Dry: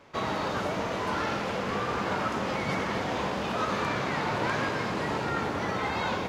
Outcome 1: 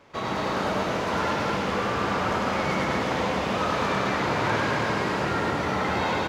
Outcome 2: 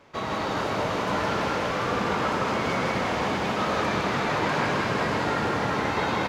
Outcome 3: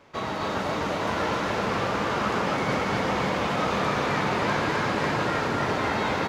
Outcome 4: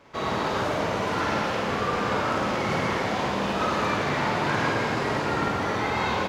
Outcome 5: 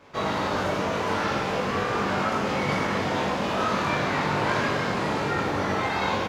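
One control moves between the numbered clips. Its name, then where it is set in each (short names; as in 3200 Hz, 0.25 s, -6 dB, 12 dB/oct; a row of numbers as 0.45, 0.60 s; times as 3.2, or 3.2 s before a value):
reverse bouncing-ball echo, first gap: 100, 160, 260, 50, 20 ms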